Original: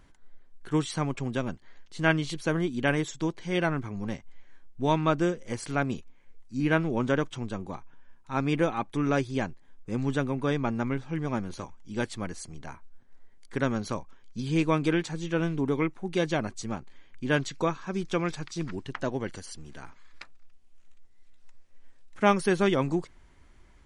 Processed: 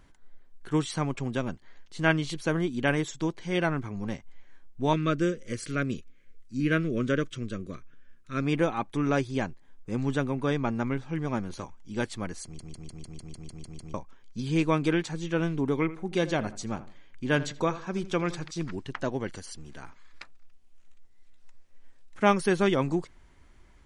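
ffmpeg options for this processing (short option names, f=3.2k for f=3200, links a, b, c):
-filter_complex "[0:a]asettb=1/sr,asplit=3[a][b][c];[a]atrim=end=4.934[d];[b]atrim=start=4.93:end=8.42,asetpts=PTS-STARTPTS,afade=t=in:d=0.004:c=qsin,afade=t=out:st=3.486:d=0.004:c=qsin,asuperstop=centerf=840:order=4:qfactor=1.3[e];[c]atrim=start=8.416[f];[d][e]acrossfade=d=0.004:c1=hsin:c2=qsin[g];[g][f]acrossfade=d=0.004:c1=qsin:c2=hsin,asettb=1/sr,asplit=3[h][i][j];[h]atrim=end=15.804[k];[i]atrim=start=15.8:end=18.51,asetpts=PTS-STARTPTS,afade=t=in:d=0.004:c=qsin,afade=t=out:st=2.706:d=0.004:c=qsin,asplit=2[l][m];[m]adelay=81,lowpass=f=2k:p=1,volume=-14.5dB,asplit=2[n][o];[o]adelay=81,lowpass=f=2k:p=1,volume=0.32,asplit=2[p][q];[q]adelay=81,lowpass=f=2k:p=1,volume=0.32[r];[l][n][p][r]amix=inputs=4:normalize=0,atrim=end_sample=119511[s];[j]atrim=start=18.506[t];[k][s]acrossfade=d=0.004:c1=hsin:c2=qsin[u];[u][t]acrossfade=d=0.004:c1=qsin:c2=hsin,asplit=11[v][w][x][y][z][aa][ab][ac][ad][ae][af];[v]atrim=end=12.592[ag];[w]atrim=start=12.438:end=12.592[ah];[x]atrim=start=12.438:end=12.592[ai];[y]atrim=start=12.438:end=12.592[aj];[z]atrim=start=12.438:end=12.592[ak];[aa]atrim=start=12.438:end=12.592[al];[ab]atrim=start=12.438:end=12.592[am];[ac]atrim=start=12.438:end=12.592[an];[ad]atrim=start=12.438:end=12.592[ao];[ae]atrim=start=12.438:end=12.592[ap];[af]atrim=start=13.938[aq];[ag][ah]acrossfade=d=0.004:c1=hsin:c2=hsin[ar];[ar][ai]acrossfade=d=0.004:c1=hsin:c2=hsin[as];[as][aj]acrossfade=d=0.004:c1=hsin:c2=hsin[at];[at][ak]acrossfade=d=0.004:c1=hsin:c2=hsin[au];[au][al]acrossfade=d=0.004:c1=hsin:c2=hsin[av];[av][am]acrossfade=d=0.004:c1=hsin:c2=hsin[aw];[aw][an]acrossfade=d=0.004:c1=hsin:c2=hsin[ax];[ax][ao]acrossfade=d=0.004:c1=hsin:c2=hsin[ay];[ay][ap]acrossfade=d=0.004:c1=hsin:c2=hsin[az];[az][aq]acrossfade=d=0.004:c1=hsin:c2=hsin"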